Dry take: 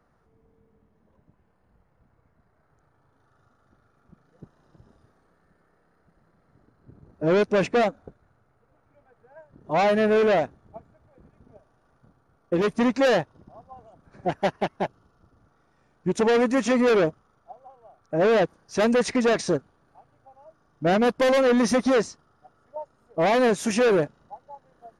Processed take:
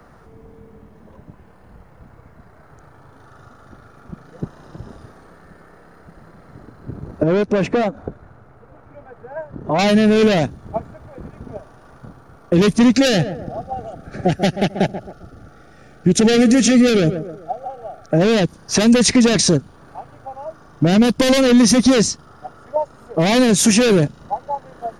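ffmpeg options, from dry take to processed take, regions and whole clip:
-filter_complex "[0:a]asettb=1/sr,asplit=3[a][b][c];[a]atrim=end=7.234[d];[b]atrim=start=7.23:end=9.79,asetpts=PTS-STARTPTS,afade=t=in:d=0.004:c=qsin,afade=t=out:st=2.556:d=0.004:c=qsin,highshelf=f=2.7k:g=-9,acompressor=threshold=-41dB:ratio=2:attack=3.2:release=140:knee=1:detection=peak[e];[c]atrim=start=9.786[f];[d][e]acrossfade=d=0.004:c1=hsin:c2=qsin[g];[g][f]acrossfade=d=0.004:c1=qsin:c2=hsin,asettb=1/sr,asplit=3[h][i][j];[h]atrim=end=12.954[k];[i]atrim=start=12.95:end=18.18,asetpts=PTS-STARTPTS,afade=t=in:d=0.004:c=qsin,afade=t=out:st=5.226:d=0.004:c=qsin,asuperstop=centerf=1000:order=4:qfactor=2.9,asplit=2[l][m];[m]adelay=132,lowpass=f=970:p=1,volume=-16dB,asplit=2[n][o];[o]adelay=132,lowpass=f=970:p=1,volume=0.3,asplit=2[p][q];[q]adelay=132,lowpass=f=970:p=1,volume=0.3[r];[l][n][p][r]amix=inputs=4:normalize=0,atrim=end_sample=230643[s];[j]atrim=start=18.176[t];[k][s]acrossfade=d=0.004:c1=hsin:c2=qsin[u];[u][t]acrossfade=d=0.004:c1=qsin:c2=hsin,acrossover=split=260|3000[v][w][x];[w]acompressor=threshold=-36dB:ratio=4[y];[v][y][x]amix=inputs=3:normalize=0,alimiter=level_in=24dB:limit=-1dB:release=50:level=0:latency=1,volume=-4.5dB"

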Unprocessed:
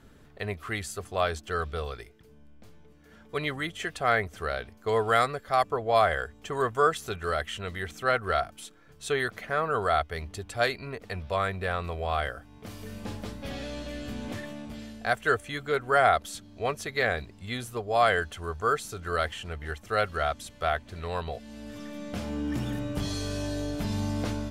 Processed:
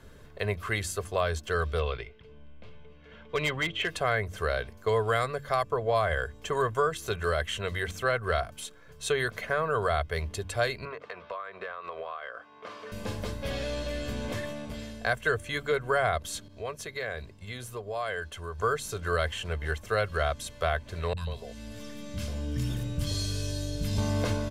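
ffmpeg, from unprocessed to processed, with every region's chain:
-filter_complex "[0:a]asettb=1/sr,asplit=3[a][b][c];[a]atrim=end=1.794[d];[b]atrim=start=1.79:end=3.88,asetpts=PTS-STARTPTS,afade=t=in:d=0.004:c=qsin,afade=t=out:st=2.086:d=0.004:c=qsin,lowpass=f=2.9k:t=q:w=2,equalizer=f=1.7k:t=o:w=0.3:g=-5,asoftclip=type=hard:threshold=-24.5dB[e];[c]atrim=start=3.876[f];[d][e]acrossfade=d=0.004:c1=hsin:c2=qsin[g];[g][f]acrossfade=d=0.004:c1=qsin:c2=hsin,asettb=1/sr,asplit=3[h][i][j];[h]atrim=end=10.854[k];[i]atrim=start=10.85:end=12.92,asetpts=PTS-STARTPTS,afade=t=in:d=0.004:c=qsin,afade=t=out:st=2.066:d=0.004:c=qsin,highpass=410,lowpass=3.4k,equalizer=f=1.2k:t=o:w=0.48:g=8.5,acompressor=threshold=-37dB:ratio=16:attack=3.2:release=140:knee=1:detection=peak[l];[j]atrim=start=12.916[m];[k][l]acrossfade=d=0.004:c1=hsin:c2=qsin[n];[n][m]acrossfade=d=0.004:c1=qsin:c2=hsin,asettb=1/sr,asplit=3[o][p][q];[o]atrim=end=16.484[r];[p]atrim=start=16.48:end=18.59,asetpts=PTS-STARTPTS,afade=t=in:d=0.004:c=qsin,afade=t=out:st=2.106:d=0.004:c=qsin,acompressor=threshold=-44dB:ratio=2:attack=3.2:release=140:knee=1:detection=peak,agate=range=-33dB:threshold=-47dB:ratio=3:release=100:detection=peak[s];[q]atrim=start=18.586[t];[r][s]acrossfade=d=0.004:c1=hsin:c2=qsin[u];[u][t]acrossfade=d=0.004:c1=qsin:c2=hsin,asettb=1/sr,asplit=3[v][w][x];[v]atrim=end=21.134[y];[w]atrim=start=21.13:end=23.98,asetpts=PTS-STARTPTS,afade=t=in:d=0.004:c=qsin,afade=t=out:st=2.846:d=0.004:c=qsin,acrossover=split=270|3000[z][aa][ab];[aa]acompressor=threshold=-48dB:ratio=2.5:attack=3.2:release=140:knee=2.83:detection=peak[ac];[z][ac][ab]amix=inputs=3:normalize=0,acrossover=split=260|930[ad][ae][af];[af]adelay=40[ag];[ae]adelay=140[ah];[ad][ah][ag]amix=inputs=3:normalize=0,atrim=end_sample=125685[ai];[x]atrim=start=23.976[aj];[y][ai]acrossfade=d=0.004:c1=hsin:c2=qsin[ak];[ak][aj]acrossfade=d=0.004:c1=qsin:c2=hsin,aecho=1:1:1.9:0.4,bandreject=f=47:t=h:w=4,bandreject=f=94:t=h:w=4,bandreject=f=141:t=h:w=4,bandreject=f=188:t=h:w=4,bandreject=f=235:t=h:w=4,bandreject=f=282:t=h:w=4,bandreject=f=329:t=h:w=4,acrossover=split=180[al][am];[am]acompressor=threshold=-28dB:ratio=3[an];[al][an]amix=inputs=2:normalize=0,volume=3dB"

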